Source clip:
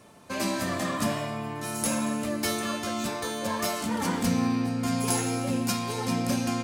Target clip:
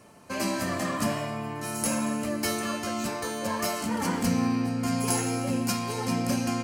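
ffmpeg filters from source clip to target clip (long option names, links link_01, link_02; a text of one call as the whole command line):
ffmpeg -i in.wav -af "bandreject=frequency=3600:width=6.3" out.wav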